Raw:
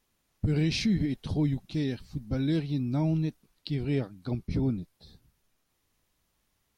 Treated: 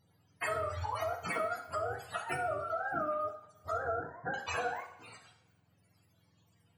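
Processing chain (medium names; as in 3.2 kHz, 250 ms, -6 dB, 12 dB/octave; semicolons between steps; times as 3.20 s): spectrum inverted on a logarithmic axis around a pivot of 440 Hz; compression 6:1, threshold -43 dBFS, peak gain reduction 18 dB; 3.74–4.34 s: elliptic low-pass 1.7 kHz, stop band 40 dB; on a send: flutter echo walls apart 10.8 m, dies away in 0.24 s; on the sum: two-slope reverb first 0.58 s, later 1.7 s, from -17 dB, DRR 4 dB; trim +8 dB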